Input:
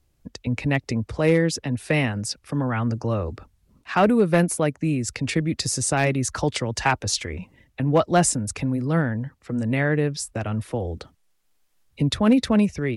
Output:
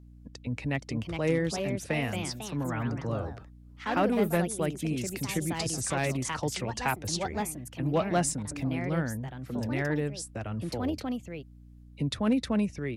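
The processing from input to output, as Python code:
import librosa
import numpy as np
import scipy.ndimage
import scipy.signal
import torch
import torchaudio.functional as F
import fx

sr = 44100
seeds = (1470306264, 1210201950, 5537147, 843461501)

y = fx.echo_pitch(x, sr, ms=528, semitones=3, count=2, db_per_echo=-6.0)
y = fx.add_hum(y, sr, base_hz=60, snr_db=20)
y = y * 10.0 ** (-8.5 / 20.0)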